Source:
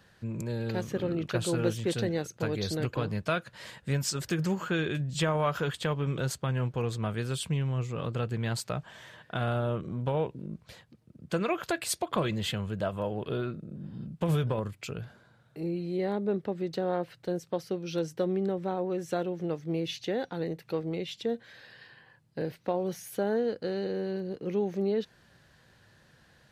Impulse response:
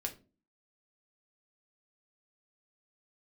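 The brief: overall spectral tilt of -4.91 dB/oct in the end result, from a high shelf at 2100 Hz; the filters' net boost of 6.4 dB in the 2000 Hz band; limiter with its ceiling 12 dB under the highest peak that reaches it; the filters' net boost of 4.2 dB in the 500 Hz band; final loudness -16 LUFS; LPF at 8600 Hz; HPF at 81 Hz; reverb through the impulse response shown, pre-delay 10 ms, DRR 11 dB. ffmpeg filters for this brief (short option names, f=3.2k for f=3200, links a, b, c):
-filter_complex "[0:a]highpass=81,lowpass=8.6k,equalizer=f=500:t=o:g=4.5,equalizer=f=2k:t=o:g=5,highshelf=f=2.1k:g=6,alimiter=limit=-20.5dB:level=0:latency=1,asplit=2[a][b];[1:a]atrim=start_sample=2205,adelay=10[c];[b][c]afir=irnorm=-1:irlink=0,volume=-11.5dB[d];[a][d]amix=inputs=2:normalize=0,volume=15.5dB"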